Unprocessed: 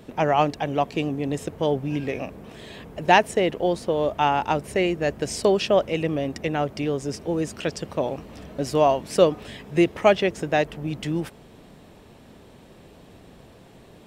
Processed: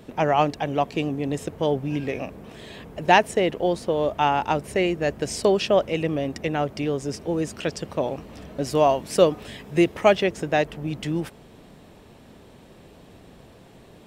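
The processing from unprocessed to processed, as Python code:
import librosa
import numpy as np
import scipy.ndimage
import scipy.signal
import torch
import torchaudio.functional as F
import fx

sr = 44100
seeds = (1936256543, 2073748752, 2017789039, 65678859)

y = fx.high_shelf(x, sr, hz=8100.0, db=4.5, at=(8.7, 10.24))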